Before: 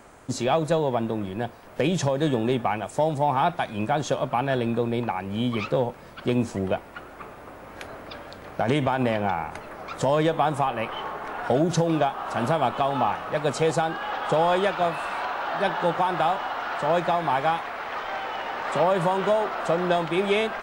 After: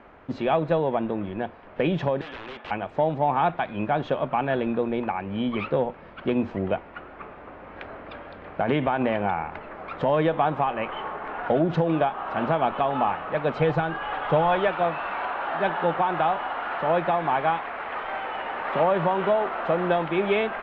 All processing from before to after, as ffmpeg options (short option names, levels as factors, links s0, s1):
-filter_complex "[0:a]asettb=1/sr,asplit=3[s0][s1][s2];[s0]atrim=end=2.214[s3];[s1]atrim=start=2.21:end=2.71,asetpts=PTS-STARTPTS,afade=t=in:d=0.004:c=qsin,afade=t=out:st=0.496:d=0.004:c=qsin,highpass=740,aeval=exprs='(mod(28.2*val(0)+1,2)-1)/28.2':c=same[s4];[s2]atrim=start=2.706[s5];[s3][s4]acrossfade=d=0.004:c1=hsin:c2=qsin[s6];[s6][s5]acrossfade=d=0.004:c1=qsin:c2=hsin,asettb=1/sr,asplit=3[s7][s8][s9];[s7]atrim=end=13.574[s10];[s8]atrim=start=13.57:end=14.68,asetpts=PTS-STARTPTS,afade=t=in:d=0.004:c=qsin,afade=t=out:st=1.106:d=0.004:c=qsin,lowpass=7600,lowshelf=f=150:t=q:w=1.5:g=6.5,aecho=1:1:6.8:0.37,atrim=end_sample=48951[s11];[s9]atrim=start=14.676[s12];[s10][s11]acrossfade=d=0.004:c1=hsin:c2=qsin[s13];[s13][s12]acrossfade=d=0.004:c1=qsin:c2=hsin,lowpass=f=3000:w=0.5412,lowpass=f=3000:w=1.3066,equalizer=f=120:t=o:w=0.2:g=-11.5"